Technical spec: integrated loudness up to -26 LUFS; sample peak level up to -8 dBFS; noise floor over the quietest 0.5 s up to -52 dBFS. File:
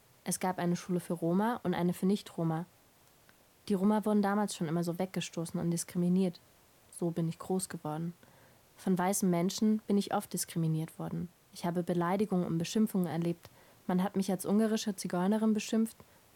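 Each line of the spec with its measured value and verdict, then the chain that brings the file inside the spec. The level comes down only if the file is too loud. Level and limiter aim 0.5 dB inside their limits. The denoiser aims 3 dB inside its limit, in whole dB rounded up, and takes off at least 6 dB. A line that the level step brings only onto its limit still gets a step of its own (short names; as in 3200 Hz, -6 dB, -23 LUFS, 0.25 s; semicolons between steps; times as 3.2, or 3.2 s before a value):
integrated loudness -33.0 LUFS: OK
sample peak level -18.5 dBFS: OK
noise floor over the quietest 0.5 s -64 dBFS: OK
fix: none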